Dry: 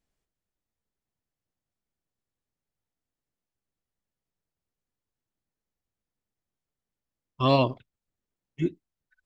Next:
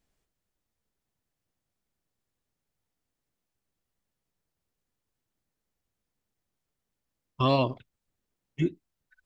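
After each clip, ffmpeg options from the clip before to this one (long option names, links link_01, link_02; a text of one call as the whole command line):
ffmpeg -i in.wav -af "acompressor=threshold=-30dB:ratio=2,volume=4.5dB" out.wav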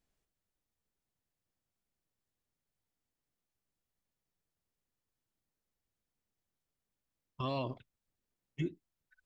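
ffmpeg -i in.wav -af "alimiter=limit=-21dB:level=0:latency=1:release=56,volume=-5.5dB" out.wav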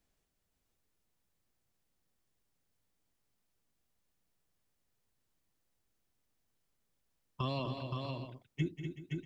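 ffmpeg -i in.wav -filter_complex "[0:a]acrossover=split=190|3000[link_01][link_02][link_03];[link_02]acompressor=threshold=-40dB:ratio=6[link_04];[link_01][link_04][link_03]amix=inputs=3:normalize=0,asplit=2[link_05][link_06];[link_06]aecho=0:1:191|246|378|521|645:0.266|0.398|0.158|0.562|0.237[link_07];[link_05][link_07]amix=inputs=2:normalize=0,volume=3.5dB" out.wav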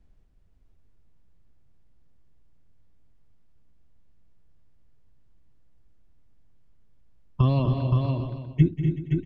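ffmpeg -i in.wav -af "aemphasis=mode=reproduction:type=riaa,aecho=1:1:278:0.266,volume=6.5dB" out.wav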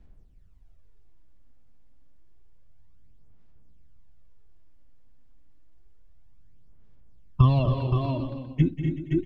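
ffmpeg -i in.wav -af "aphaser=in_gain=1:out_gain=1:delay=3.9:decay=0.53:speed=0.29:type=sinusoidal" out.wav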